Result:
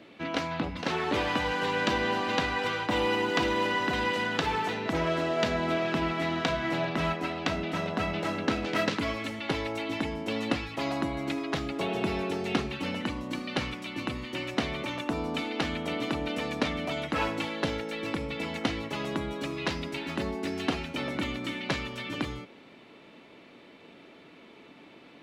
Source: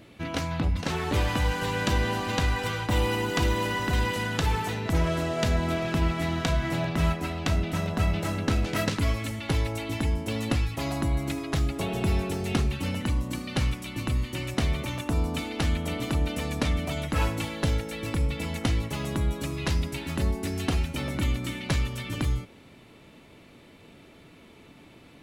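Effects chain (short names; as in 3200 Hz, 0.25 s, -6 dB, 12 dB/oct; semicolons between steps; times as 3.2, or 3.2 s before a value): three-band isolator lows -19 dB, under 190 Hz, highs -16 dB, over 5300 Hz; gain +1.5 dB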